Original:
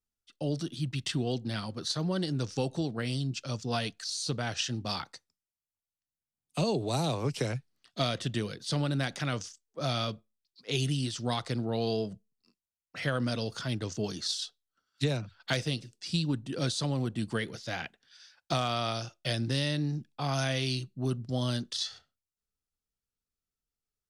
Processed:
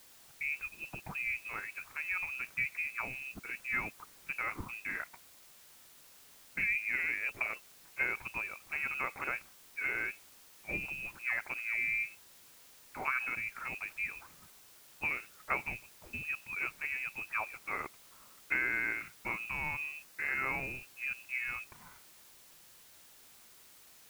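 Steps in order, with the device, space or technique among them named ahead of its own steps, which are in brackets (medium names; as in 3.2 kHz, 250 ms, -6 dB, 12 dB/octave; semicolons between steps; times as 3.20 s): scrambled radio voice (band-pass 380–2700 Hz; frequency inversion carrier 2.8 kHz; white noise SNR 19 dB); 20.06–20.77 s: band-stop 3.2 kHz, Q 11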